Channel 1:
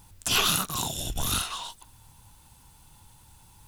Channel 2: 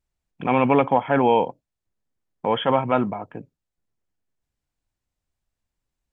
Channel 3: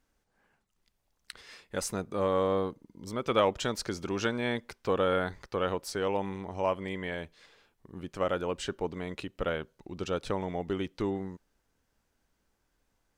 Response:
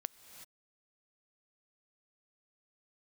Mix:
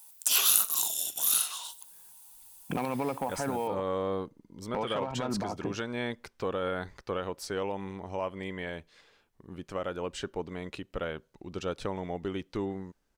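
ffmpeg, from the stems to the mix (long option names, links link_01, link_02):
-filter_complex "[0:a]highpass=400,aemphasis=mode=production:type=75fm,volume=-9dB,asplit=2[link_01][link_02];[link_02]volume=-18dB[link_03];[1:a]acompressor=threshold=-26dB:ratio=12,aeval=exprs='0.106*(abs(mod(val(0)/0.106+3,4)-2)-1)':channel_layout=same,adynamicsmooth=sensitivity=6:basefreq=2200,adelay=2300,volume=-2.5dB[link_04];[2:a]adelay=1550,volume=-7.5dB[link_05];[link_04][link_05]amix=inputs=2:normalize=0,acontrast=52,alimiter=limit=-22dB:level=0:latency=1:release=175,volume=0dB[link_06];[link_03]aecho=0:1:61|122|183|244|305:1|0.36|0.13|0.0467|0.0168[link_07];[link_01][link_06][link_07]amix=inputs=3:normalize=0"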